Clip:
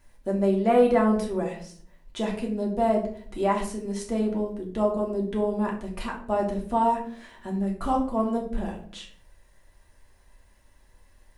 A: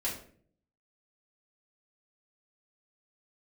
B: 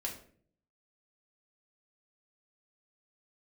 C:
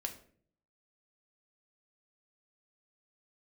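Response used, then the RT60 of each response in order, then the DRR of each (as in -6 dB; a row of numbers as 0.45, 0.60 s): B; 0.50, 0.50, 0.55 s; -7.0, -1.5, 3.5 dB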